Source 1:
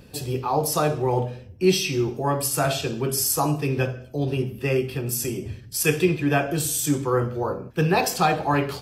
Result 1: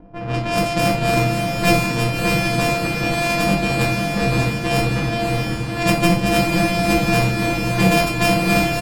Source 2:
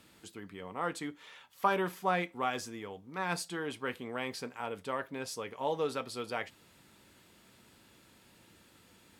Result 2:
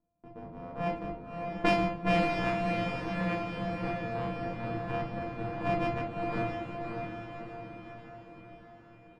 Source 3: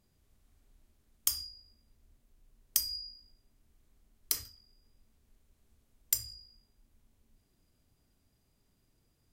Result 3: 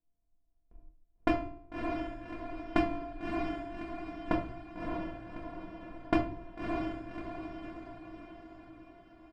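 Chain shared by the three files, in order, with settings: sorted samples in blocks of 128 samples; level-controlled noise filter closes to 820 Hz, open at -17.5 dBFS; bass shelf 96 Hz +4.5 dB; band-stop 5.9 kHz, Q 20; comb 6.2 ms, depth 44%; gate with hold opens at -51 dBFS; echo that smears into a reverb 605 ms, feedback 56%, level -3.5 dB; simulated room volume 240 m³, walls furnished, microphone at 1.8 m; trim +1 dB

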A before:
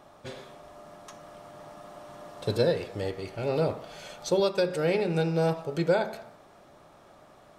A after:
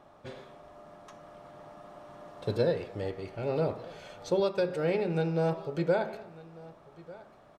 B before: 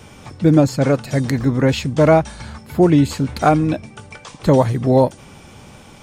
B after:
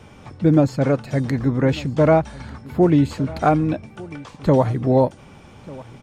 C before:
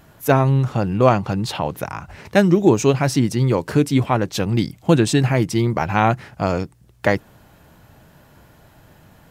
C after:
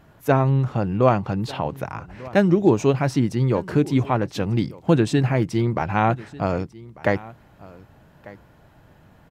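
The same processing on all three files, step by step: treble shelf 4.3 kHz -11 dB; on a send: delay 1195 ms -20.5 dB; on the sum: trim -2.5 dB

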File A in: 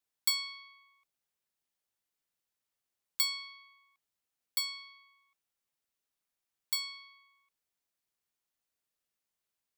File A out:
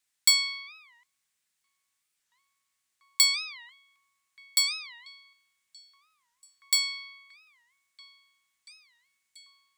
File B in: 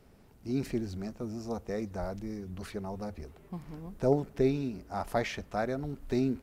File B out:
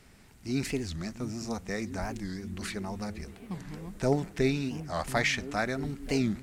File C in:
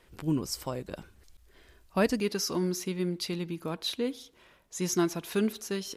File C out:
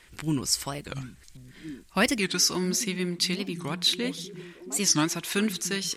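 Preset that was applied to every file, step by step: graphic EQ 500/2000/4000/8000 Hz -5/+8/+4/+10 dB; on a send: repeats whose band climbs or falls 684 ms, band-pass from 170 Hz, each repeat 0.7 oct, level -8 dB; on the sum: warped record 45 rpm, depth 250 cents; trim +2 dB

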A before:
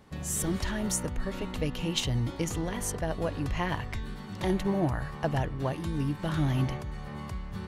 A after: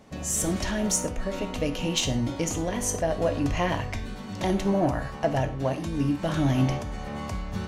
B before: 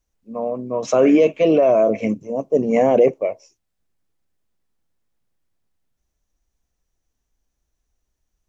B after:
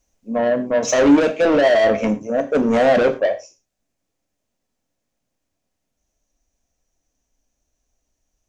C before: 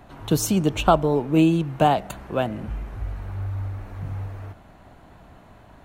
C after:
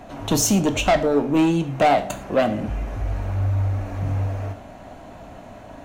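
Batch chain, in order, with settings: fifteen-band graphic EQ 250 Hz +6 dB, 630 Hz +9 dB, 2.5 kHz +4 dB, 6.3 kHz +8 dB; gain riding within 5 dB 2 s; saturation -13 dBFS; gated-style reverb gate 140 ms falling, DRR 7 dB

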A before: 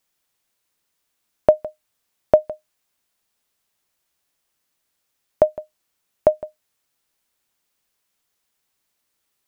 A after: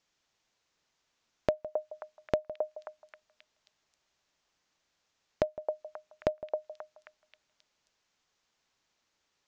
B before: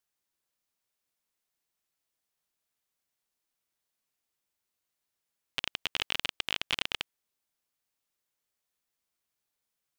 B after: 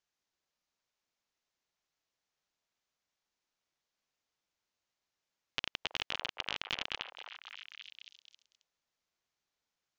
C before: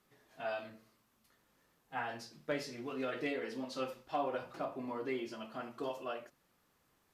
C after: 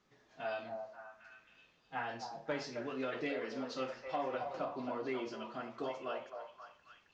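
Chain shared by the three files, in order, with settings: steep low-pass 6.9 kHz 48 dB/octave; compression 2.5:1, threshold -33 dBFS; on a send: repeats whose band climbs or falls 267 ms, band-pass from 690 Hz, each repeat 0.7 oct, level -4 dB

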